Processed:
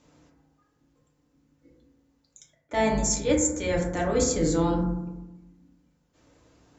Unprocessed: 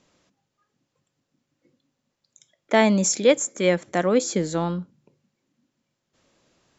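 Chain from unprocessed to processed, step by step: octaver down 2 oct, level -5 dB; high shelf 5400 Hz +12 dB; reverse; compressor 5:1, threshold -27 dBFS, peak gain reduction 14.5 dB; reverse; FDN reverb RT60 1 s, low-frequency decay 1.35×, high-frequency decay 0.25×, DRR -3 dB; mismatched tape noise reduction decoder only

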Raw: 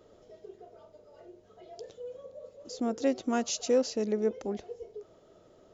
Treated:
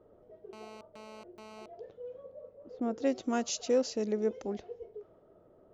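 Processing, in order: 2.41–3.05 high shelf 4000 Hz -12 dB; low-pass opened by the level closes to 1100 Hz, open at -27 dBFS; 0.53–1.66 GSM buzz -47 dBFS; gain -2 dB

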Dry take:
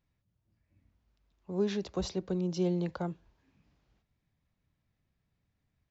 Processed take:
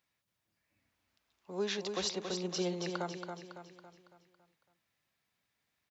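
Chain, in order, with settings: HPF 1300 Hz 6 dB/oct; feedback echo 0.278 s, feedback 47%, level -6 dB; gain +6.5 dB

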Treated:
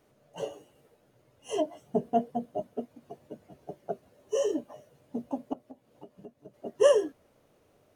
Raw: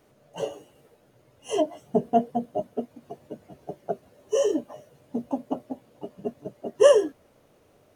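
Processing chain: 5.53–6.54 compressor 6:1, threshold -40 dBFS, peak gain reduction 14.5 dB; gain -5 dB

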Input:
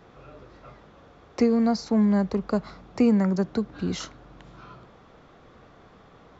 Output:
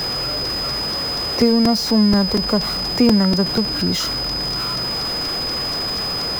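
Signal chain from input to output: zero-crossing step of -28.5 dBFS; whine 5000 Hz -26 dBFS; crackling interface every 0.24 s, samples 128, repeat, from 0.45; gain +4.5 dB

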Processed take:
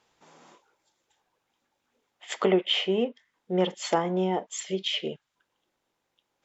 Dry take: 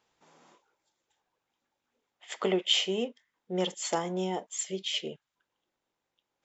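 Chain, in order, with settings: treble ducked by the level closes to 2400 Hz, closed at -27.5 dBFS; gain +5.5 dB

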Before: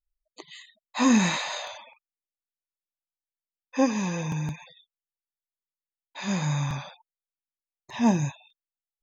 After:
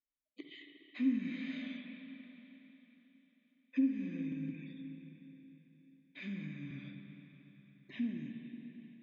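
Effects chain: high shelf 2800 Hz -10.5 dB; compressor 6:1, threshold -38 dBFS, peak gain reduction 20 dB; vowel filter i; air absorption 100 m; reverb RT60 3.9 s, pre-delay 45 ms, DRR 3.5 dB; gain +10.5 dB

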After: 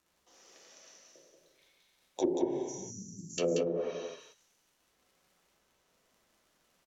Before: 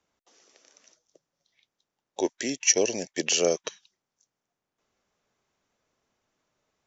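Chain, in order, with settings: crackle 66/s -52 dBFS; 2.38–3.38 inverse Chebyshev band-stop 720–2600 Hz, stop band 80 dB; non-linear reverb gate 0.48 s falling, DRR -5.5 dB; in parallel at -9 dB: soft clip -15.5 dBFS, distortion -13 dB; on the sum: treble ducked by the level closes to 360 Hz, closed at -15.5 dBFS; on a send: echo 0.183 s -4.5 dB; on the sum: gain -8 dB

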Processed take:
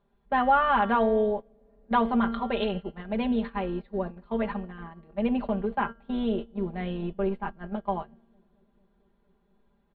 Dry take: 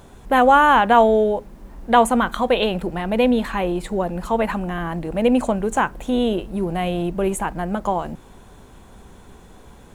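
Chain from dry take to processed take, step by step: high shelf 3100 Hz -7.5 dB; resonator 230 Hz, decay 1.1 s, mix 70%; on a send: analogue delay 0.226 s, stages 1024, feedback 84%, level -22 dB; on the sum: gate -33 dBFS, range -17 dB; elliptic low-pass 4300 Hz, stop band 40 dB; comb 5 ms, depth 82%

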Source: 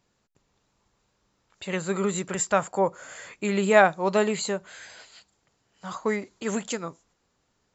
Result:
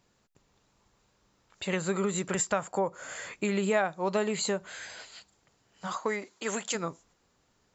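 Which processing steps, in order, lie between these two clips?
5.86–6.74 HPF 350 Hz -> 770 Hz 6 dB/oct; compressor 3:1, threshold -29 dBFS, peak gain reduction 13 dB; gain +2 dB

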